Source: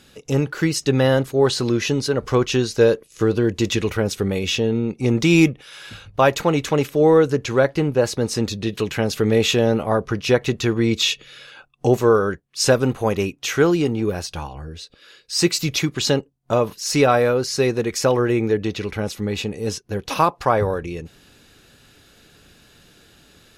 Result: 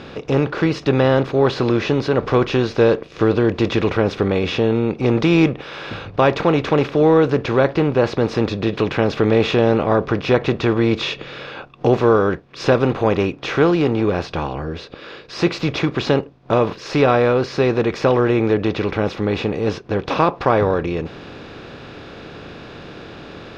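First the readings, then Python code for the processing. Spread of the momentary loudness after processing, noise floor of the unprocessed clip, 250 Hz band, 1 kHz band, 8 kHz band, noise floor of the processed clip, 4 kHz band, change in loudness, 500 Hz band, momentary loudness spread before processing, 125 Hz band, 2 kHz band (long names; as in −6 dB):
18 LU, −54 dBFS, +2.5 dB, +2.5 dB, below −10 dB, −39 dBFS, −3.0 dB, +1.5 dB, +2.0 dB, 10 LU, +2.0 dB, +1.5 dB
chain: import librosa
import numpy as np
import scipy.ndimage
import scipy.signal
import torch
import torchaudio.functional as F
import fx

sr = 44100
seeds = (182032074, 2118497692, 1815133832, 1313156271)

y = fx.bin_compress(x, sr, power=0.6)
y = fx.air_absorb(y, sr, metres=260.0)
y = y * 10.0 ** (-1.0 / 20.0)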